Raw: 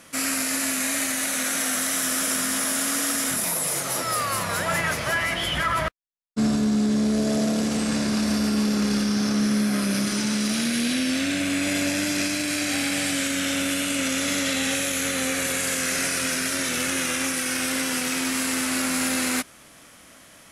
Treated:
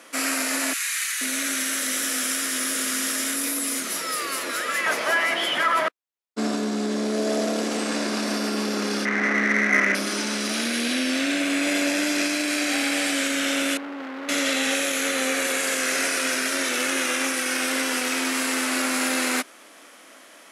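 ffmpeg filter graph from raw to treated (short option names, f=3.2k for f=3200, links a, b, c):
-filter_complex "[0:a]asettb=1/sr,asplit=3[a][b][c];[a]atrim=end=0.734[d];[b]atrim=start=0.73:end=4.86,asetpts=PTS-STARTPTS,afade=t=in:d=0.004:c=qsin,afade=t=out:st=4.126:d=0.004:c=qsin,equalizer=f=760:t=o:w=0.89:g=-10.5,acrossover=split=1100[e][f];[e]adelay=480[g];[g][f]amix=inputs=2:normalize=0,atrim=end_sample=182133[h];[c]atrim=start=4.856[i];[d][h]acrossfade=d=0.004:c1=hsin:c2=qsin[j];[j][i]acrossfade=d=0.004:c1=qsin:c2=hsin,asettb=1/sr,asplit=3[k][l][m];[k]atrim=end=9.054[n];[l]atrim=start=9.05:end=9.95,asetpts=PTS-STARTPTS,afade=t=in:d=0.004:c=qsin,afade=t=out:st=0.896:d=0.004:c=qsin,lowpass=f=2k:t=q:w=14,adynamicsmooth=sensitivity=2:basefreq=1.2k[o];[m]atrim=start=9.946[p];[n][o]acrossfade=d=0.004:c1=hsin:c2=qsin[q];[q][p]acrossfade=d=0.004:c1=qsin:c2=hsin,asettb=1/sr,asplit=3[r][s][t];[r]atrim=end=13.774[u];[s]atrim=start=13.77:end=14.29,asetpts=PTS-STARTPTS,afade=t=in:d=0.004:c=qsin,afade=t=out:st=0.516:d=0.004:c=qsin,lowpass=f=1.6k:w=0.5412,lowpass=f=1.6k:w=1.3066,asoftclip=type=hard:threshold=-33.5dB[v];[t]atrim=start=14.286[w];[u][v]acrossfade=d=0.004:c1=hsin:c2=qsin[x];[x][w]acrossfade=d=0.004:c1=qsin:c2=hsin,highpass=f=280:w=0.5412,highpass=f=280:w=1.3066,highshelf=f=4.7k:g=-6,volume=3.5dB"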